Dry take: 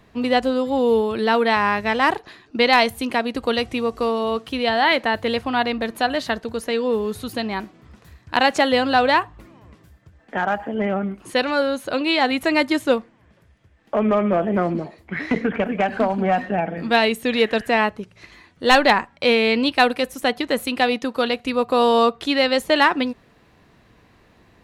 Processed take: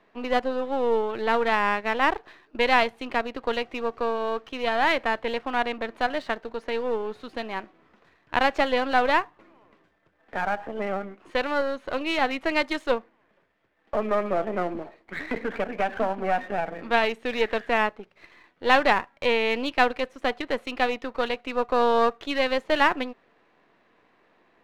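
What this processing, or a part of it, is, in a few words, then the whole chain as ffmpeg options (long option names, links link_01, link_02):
crystal radio: -filter_complex "[0:a]asettb=1/sr,asplit=3[link_01][link_02][link_03];[link_01]atrim=end=12.514[link_04];[link_02]atrim=start=12.51:end=12.92,asetpts=PTS-STARTPTS,afade=type=in:duration=0.004:curve=qsin,afade=type=out:start_time=0.406:duration=0.004:curve=qsin,bass=frequency=250:gain=-7,treble=frequency=4000:gain=11[link_05];[link_03]atrim=start=12.916[link_06];[link_04][link_05]acrossfade=duration=0.004:curve1=hsin:curve2=qsin[link_07];[link_07][link_06]acrossfade=duration=0.004:curve1=qsin:curve2=hsin,highpass=340,lowpass=2700,aeval=exprs='if(lt(val(0),0),0.447*val(0),val(0))':channel_layout=same,volume=-2dB"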